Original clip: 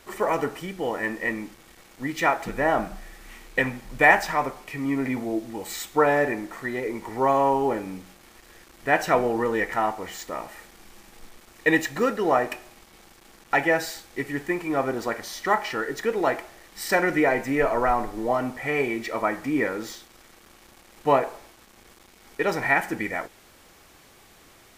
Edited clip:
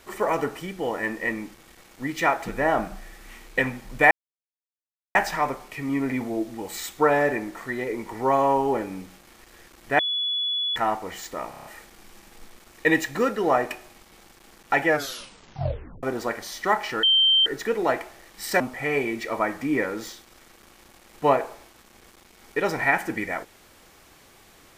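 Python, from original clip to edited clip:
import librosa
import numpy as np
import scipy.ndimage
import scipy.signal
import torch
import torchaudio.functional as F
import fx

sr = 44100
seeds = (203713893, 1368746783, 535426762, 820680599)

y = fx.edit(x, sr, fx.insert_silence(at_s=4.11, length_s=1.04),
    fx.bleep(start_s=8.95, length_s=0.77, hz=3410.0, db=-23.0),
    fx.stutter(start_s=10.46, slice_s=0.03, count=6),
    fx.tape_stop(start_s=13.68, length_s=1.16),
    fx.insert_tone(at_s=15.84, length_s=0.43, hz=3130.0, db=-15.0),
    fx.cut(start_s=16.98, length_s=1.45), tone=tone)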